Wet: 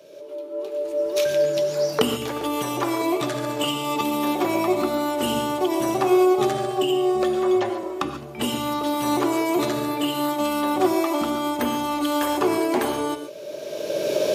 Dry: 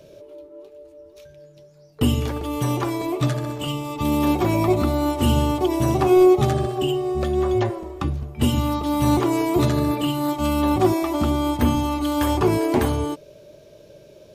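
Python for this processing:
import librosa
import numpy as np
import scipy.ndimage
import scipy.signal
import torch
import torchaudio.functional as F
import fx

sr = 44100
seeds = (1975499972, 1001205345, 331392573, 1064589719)

y = fx.recorder_agc(x, sr, target_db=-12.0, rise_db_per_s=21.0, max_gain_db=30)
y = scipy.signal.sosfilt(scipy.signal.butter(2, 330.0, 'highpass', fs=sr, output='sos'), y)
y = fx.rev_gated(y, sr, seeds[0], gate_ms=160, shape='rising', drr_db=8.5)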